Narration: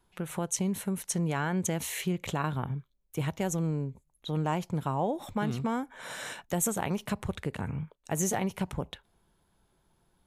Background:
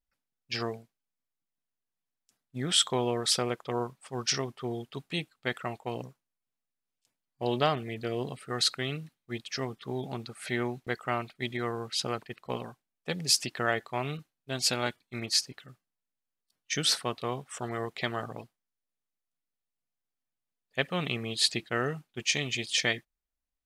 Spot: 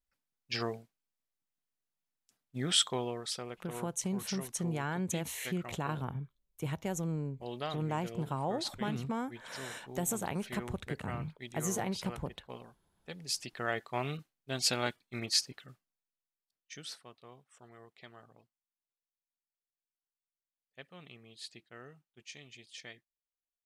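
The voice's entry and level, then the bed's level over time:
3.45 s, -5.0 dB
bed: 2.73 s -2 dB
3.34 s -12 dB
13.23 s -12 dB
13.95 s -2.5 dB
15.71 s -2.5 dB
17.06 s -21 dB

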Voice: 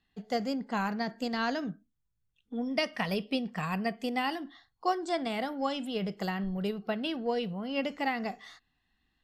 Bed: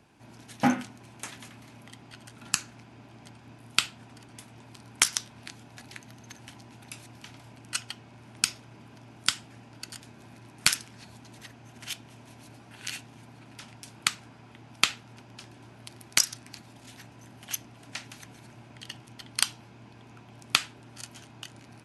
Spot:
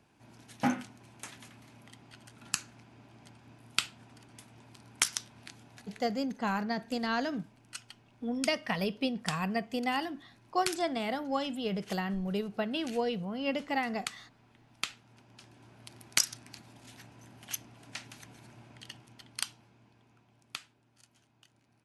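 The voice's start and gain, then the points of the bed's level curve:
5.70 s, -0.5 dB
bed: 5.76 s -5.5 dB
6.12 s -12 dB
14.88 s -12 dB
16.01 s -4 dB
18.67 s -4 dB
20.86 s -20 dB

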